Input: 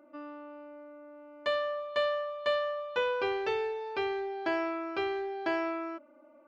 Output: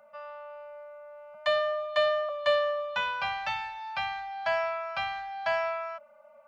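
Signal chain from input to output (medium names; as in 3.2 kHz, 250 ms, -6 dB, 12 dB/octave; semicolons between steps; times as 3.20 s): 1.34–2.29 s: frequency shift +21 Hz; Chebyshev band-stop 220–560 Hz, order 5; trim +5 dB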